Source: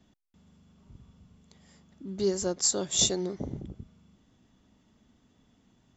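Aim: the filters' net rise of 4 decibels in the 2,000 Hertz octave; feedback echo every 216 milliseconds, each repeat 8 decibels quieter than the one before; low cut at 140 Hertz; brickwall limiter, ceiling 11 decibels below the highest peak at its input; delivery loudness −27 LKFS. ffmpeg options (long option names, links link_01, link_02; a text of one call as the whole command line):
ffmpeg -i in.wav -af "highpass=140,equalizer=frequency=2000:width_type=o:gain=5.5,alimiter=limit=-21dB:level=0:latency=1,aecho=1:1:216|432|648|864|1080:0.398|0.159|0.0637|0.0255|0.0102,volume=4.5dB" out.wav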